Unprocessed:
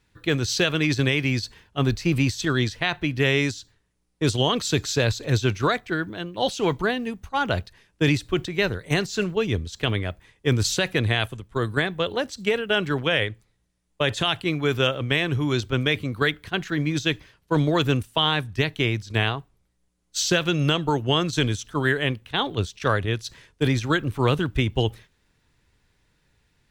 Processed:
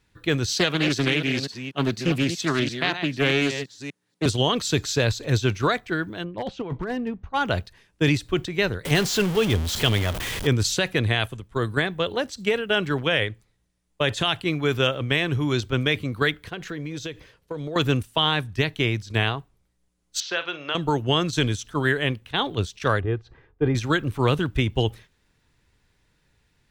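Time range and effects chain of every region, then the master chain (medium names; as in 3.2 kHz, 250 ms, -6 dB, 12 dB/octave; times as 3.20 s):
0.50–4.26 s: chunks repeated in reverse 243 ms, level -9 dB + high-pass 140 Hz 24 dB/octave + loudspeaker Doppler distortion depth 0.45 ms
6.24–7.34 s: tape spacing loss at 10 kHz 34 dB + compressor with a negative ratio -26 dBFS, ratio -0.5 + hard clipper -22 dBFS
8.85–10.47 s: jump at every zero crossing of -24.5 dBFS + peaking EQ 3.2 kHz +6 dB 0.21 oct
16.47–17.76 s: peaking EQ 490 Hz +10 dB 0.38 oct + compression 10:1, threshold -28 dBFS
20.20–20.75 s: high-pass 680 Hz + distance through air 250 m + doubling 47 ms -12 dB
23.00–23.75 s: low-pass 1.2 kHz + comb 2.5 ms, depth 43%
whole clip: none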